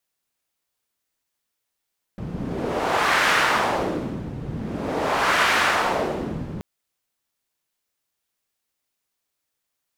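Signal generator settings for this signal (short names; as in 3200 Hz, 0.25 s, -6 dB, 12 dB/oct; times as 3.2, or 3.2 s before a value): wind-like swept noise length 4.43 s, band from 150 Hz, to 1600 Hz, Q 1.3, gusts 2, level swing 12 dB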